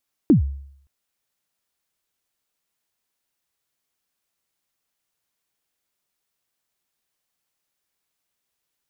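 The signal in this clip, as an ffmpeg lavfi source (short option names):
-f lavfi -i "aevalsrc='0.422*pow(10,-3*t/0.66)*sin(2*PI*(350*0.118/log(69/350)*(exp(log(69/350)*min(t,0.118)/0.118)-1)+69*max(t-0.118,0)))':d=0.57:s=44100"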